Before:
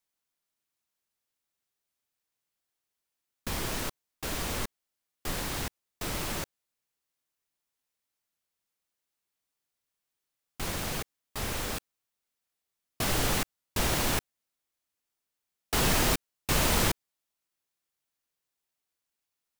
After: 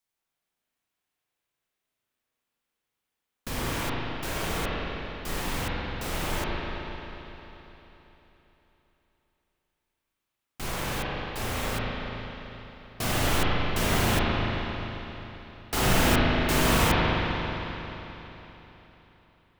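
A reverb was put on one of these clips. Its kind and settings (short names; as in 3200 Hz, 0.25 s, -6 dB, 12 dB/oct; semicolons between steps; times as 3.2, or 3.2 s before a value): spring tank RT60 3.7 s, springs 36/44 ms, chirp 75 ms, DRR -6.5 dB; gain -1.5 dB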